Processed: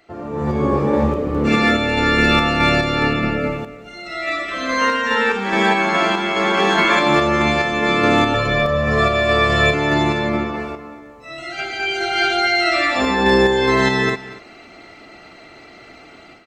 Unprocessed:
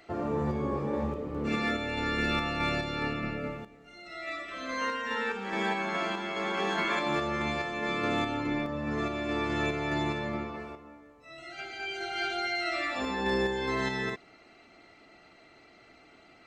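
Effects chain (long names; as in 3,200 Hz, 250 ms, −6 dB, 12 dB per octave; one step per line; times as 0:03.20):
0:08.34–0:09.74: comb filter 1.7 ms, depth 79%
automatic gain control gain up to 14.5 dB
single-tap delay 237 ms −17 dB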